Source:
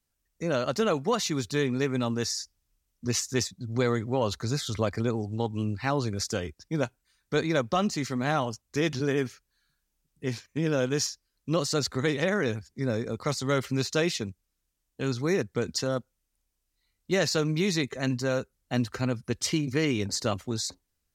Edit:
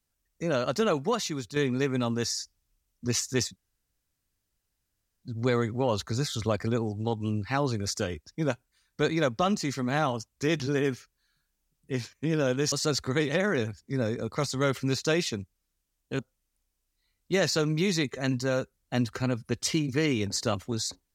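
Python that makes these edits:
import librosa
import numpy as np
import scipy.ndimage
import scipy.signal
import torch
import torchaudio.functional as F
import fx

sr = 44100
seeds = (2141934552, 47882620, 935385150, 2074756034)

y = fx.edit(x, sr, fx.fade_out_to(start_s=1.0, length_s=0.56, floor_db=-8.0),
    fx.insert_room_tone(at_s=3.56, length_s=1.67),
    fx.cut(start_s=11.05, length_s=0.55),
    fx.cut(start_s=15.07, length_s=0.91), tone=tone)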